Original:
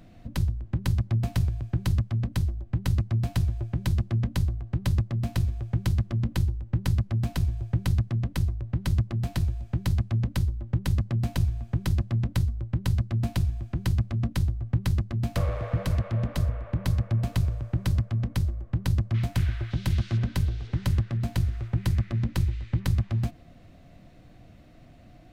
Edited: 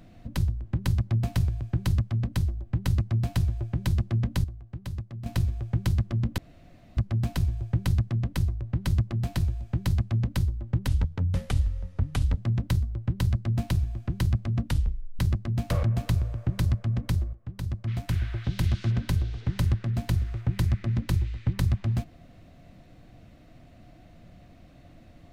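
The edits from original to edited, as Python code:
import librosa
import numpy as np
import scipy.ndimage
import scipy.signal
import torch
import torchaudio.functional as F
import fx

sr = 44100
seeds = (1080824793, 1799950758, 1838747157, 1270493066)

y = fx.edit(x, sr, fx.clip_gain(start_s=4.44, length_s=0.82, db=-10.0),
    fx.room_tone_fill(start_s=6.38, length_s=0.59),
    fx.speed_span(start_s=10.88, length_s=1.15, speed=0.77),
    fx.tape_stop(start_s=14.33, length_s=0.52),
    fx.cut(start_s=15.49, length_s=1.61),
    fx.fade_in_from(start_s=18.6, length_s=1.11, floor_db=-14.0), tone=tone)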